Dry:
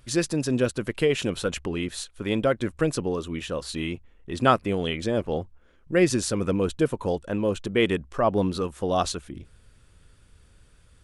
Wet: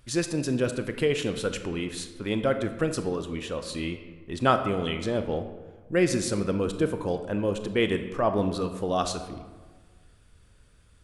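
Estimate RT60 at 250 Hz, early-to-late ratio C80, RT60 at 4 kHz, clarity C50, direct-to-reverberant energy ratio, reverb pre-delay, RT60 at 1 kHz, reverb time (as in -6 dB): 1.5 s, 11.0 dB, 0.80 s, 9.0 dB, 7.5 dB, 25 ms, 1.4 s, 1.4 s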